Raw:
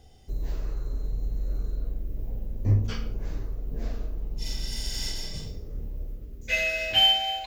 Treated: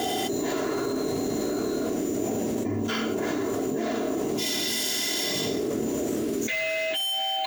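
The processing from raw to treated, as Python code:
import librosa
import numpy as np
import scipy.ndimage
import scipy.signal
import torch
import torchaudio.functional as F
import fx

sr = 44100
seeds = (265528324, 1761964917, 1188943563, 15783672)

y = scipy.signal.sosfilt(scipy.signal.butter(4, 190.0, 'highpass', fs=sr, output='sos'), x)
y = fx.peak_eq(y, sr, hz=5000.0, db=-9.0, octaves=0.33)
y = fx.notch(y, sr, hz=2500.0, q=19.0)
y = y + 0.62 * np.pad(y, (int(2.9 * sr / 1000.0), 0))[:len(y)]
y = np.repeat(y[::2], 2)[:len(y)]
y = 10.0 ** (-21.5 / 20.0) * np.tanh(y / 10.0 ** (-21.5 / 20.0))
y = fx.env_flatten(y, sr, amount_pct=100)
y = y * 10.0 ** (-5.0 / 20.0)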